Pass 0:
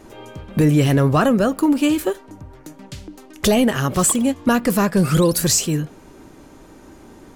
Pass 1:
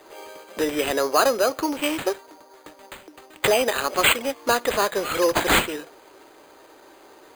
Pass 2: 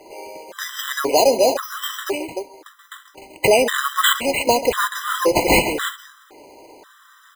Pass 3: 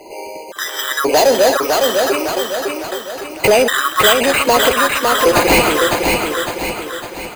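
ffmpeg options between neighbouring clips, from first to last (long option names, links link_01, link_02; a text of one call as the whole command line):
ffmpeg -i in.wav -af "highpass=frequency=410:width=0.5412,highpass=frequency=410:width=1.3066,acrusher=samples=8:mix=1:aa=0.000001" out.wav
ffmpeg -i in.wav -filter_complex "[0:a]asplit=2[link_01][link_02];[link_02]aecho=0:1:136|300:0.178|0.355[link_03];[link_01][link_03]amix=inputs=2:normalize=0,afftfilt=real='re*gt(sin(2*PI*0.95*pts/sr)*(1-2*mod(floor(b*sr/1024/1000),2)),0)':imag='im*gt(sin(2*PI*0.95*pts/sr)*(1-2*mod(floor(b*sr/1024/1000),2)),0)':win_size=1024:overlap=0.75,volume=5.5dB" out.wav
ffmpeg -i in.wav -filter_complex "[0:a]asoftclip=type=tanh:threshold=-12dB,asplit=2[link_01][link_02];[link_02]aecho=0:1:556|1112|1668|2224|2780|3336:0.631|0.309|0.151|0.0742|0.0364|0.0178[link_03];[link_01][link_03]amix=inputs=2:normalize=0,volume=6.5dB" out.wav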